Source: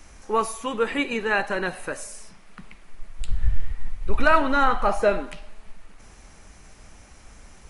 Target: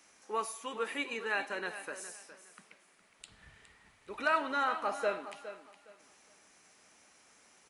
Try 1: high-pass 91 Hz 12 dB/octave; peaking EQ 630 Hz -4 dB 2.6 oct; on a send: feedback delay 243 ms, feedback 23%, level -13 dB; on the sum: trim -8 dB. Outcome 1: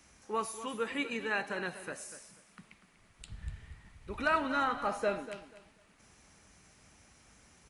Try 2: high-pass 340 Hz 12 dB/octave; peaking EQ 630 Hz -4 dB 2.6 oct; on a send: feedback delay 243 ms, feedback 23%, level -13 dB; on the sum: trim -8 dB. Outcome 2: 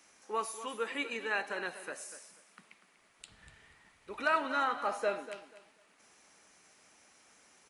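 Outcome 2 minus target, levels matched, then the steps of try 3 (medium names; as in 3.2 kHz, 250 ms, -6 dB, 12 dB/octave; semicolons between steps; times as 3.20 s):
echo 170 ms early
high-pass 340 Hz 12 dB/octave; peaking EQ 630 Hz -4 dB 2.6 oct; on a send: feedback delay 413 ms, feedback 23%, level -13 dB; on the sum: trim -8 dB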